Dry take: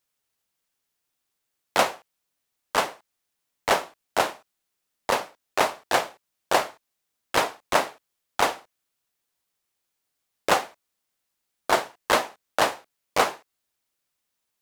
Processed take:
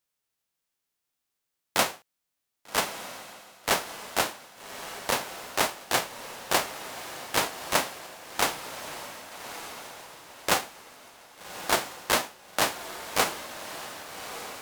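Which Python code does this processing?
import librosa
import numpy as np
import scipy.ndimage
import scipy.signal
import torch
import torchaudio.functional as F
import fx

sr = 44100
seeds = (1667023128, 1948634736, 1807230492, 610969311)

y = fx.envelope_flatten(x, sr, power=0.6)
y = fx.echo_diffused(y, sr, ms=1210, feedback_pct=42, wet_db=-10.0)
y = y * 10.0 ** (-3.5 / 20.0)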